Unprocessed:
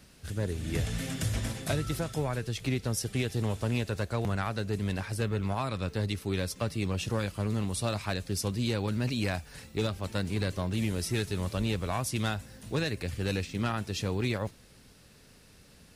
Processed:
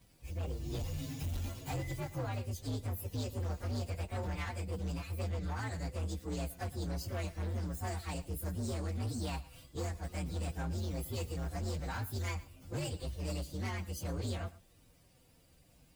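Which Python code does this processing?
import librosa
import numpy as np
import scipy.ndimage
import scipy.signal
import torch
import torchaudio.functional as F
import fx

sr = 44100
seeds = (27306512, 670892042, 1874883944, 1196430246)

p1 = fx.partial_stretch(x, sr, pct=125)
p2 = fx.notch_comb(p1, sr, f0_hz=210.0)
p3 = np.clip(p2, -10.0 ** (-30.5 / 20.0), 10.0 ** (-30.5 / 20.0))
p4 = p3 + fx.echo_single(p3, sr, ms=114, db=-18.5, dry=0)
y = F.gain(torch.from_numpy(p4), -2.5).numpy()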